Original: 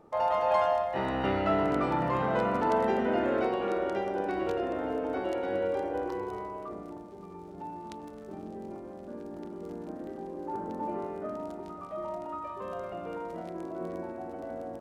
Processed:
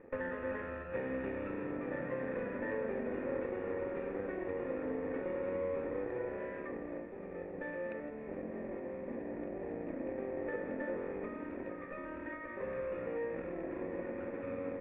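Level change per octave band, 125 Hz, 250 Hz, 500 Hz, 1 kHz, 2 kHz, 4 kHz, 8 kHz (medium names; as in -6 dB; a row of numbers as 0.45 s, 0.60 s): -8.5 dB, -6.0 dB, -6.5 dB, -16.5 dB, -4.0 dB, under -20 dB, no reading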